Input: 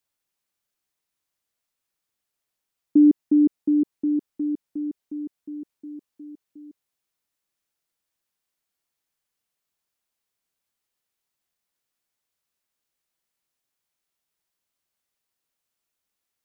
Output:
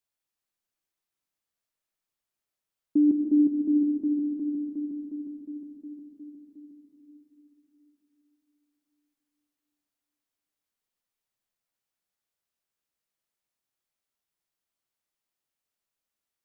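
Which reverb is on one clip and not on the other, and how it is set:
comb and all-pass reverb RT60 3.8 s, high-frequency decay 0.3×, pre-delay 75 ms, DRR 3 dB
level −6.5 dB

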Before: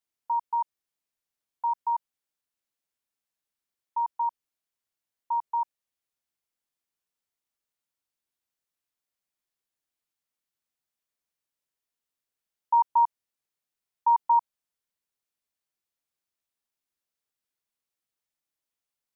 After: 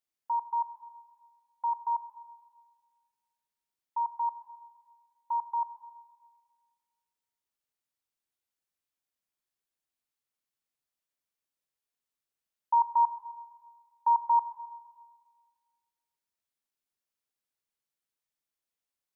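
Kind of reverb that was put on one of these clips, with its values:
four-comb reverb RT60 1.7 s, combs from 29 ms, DRR 12 dB
level −3 dB

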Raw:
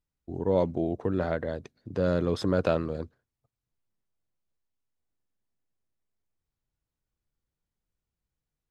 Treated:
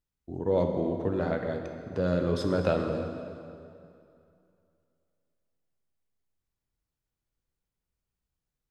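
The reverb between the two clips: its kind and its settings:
dense smooth reverb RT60 2.6 s, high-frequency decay 0.8×, DRR 3.5 dB
level −2 dB

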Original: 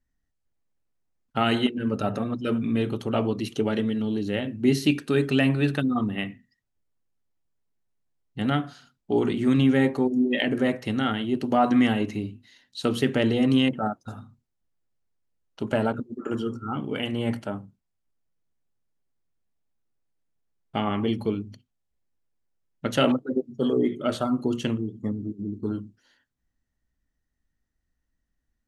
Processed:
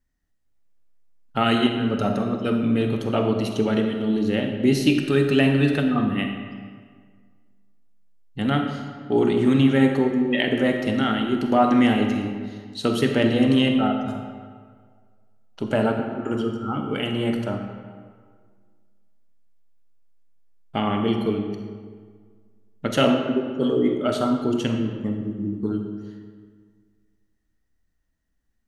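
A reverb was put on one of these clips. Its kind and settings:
comb and all-pass reverb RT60 1.8 s, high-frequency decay 0.65×, pre-delay 5 ms, DRR 4 dB
level +2 dB

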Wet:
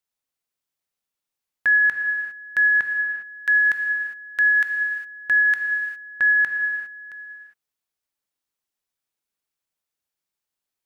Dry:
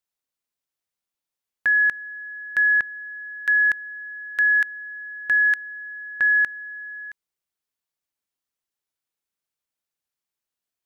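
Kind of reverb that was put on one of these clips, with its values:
reverb whose tail is shaped and stops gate 430 ms flat, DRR 4 dB

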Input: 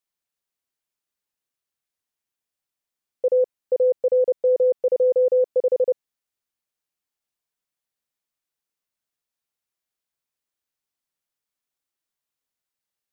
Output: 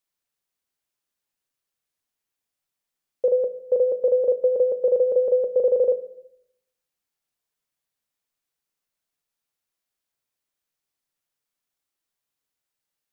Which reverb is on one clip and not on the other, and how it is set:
rectangular room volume 150 cubic metres, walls mixed, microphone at 0.3 metres
level +1.5 dB

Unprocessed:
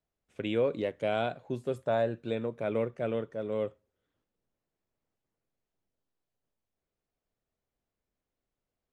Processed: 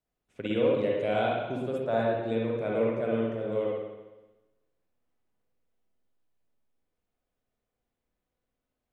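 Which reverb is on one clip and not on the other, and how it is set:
spring reverb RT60 1.1 s, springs 53/57 ms, chirp 30 ms, DRR −3.5 dB
level −2 dB

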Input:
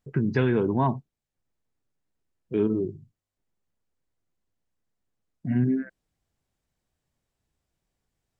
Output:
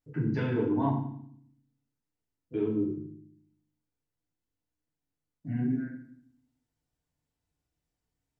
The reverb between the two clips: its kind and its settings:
feedback delay network reverb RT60 0.62 s, low-frequency decay 1.55×, high-frequency decay 0.95×, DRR −4.5 dB
level −11.5 dB

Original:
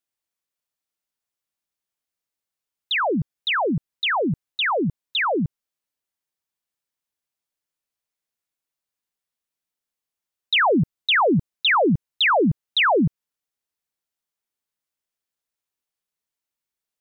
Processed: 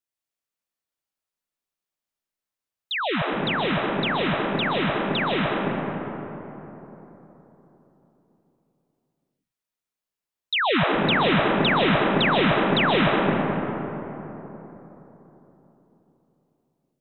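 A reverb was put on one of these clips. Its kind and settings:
comb and all-pass reverb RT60 3.9 s, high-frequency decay 0.35×, pre-delay 95 ms, DRR −2.5 dB
level −5 dB

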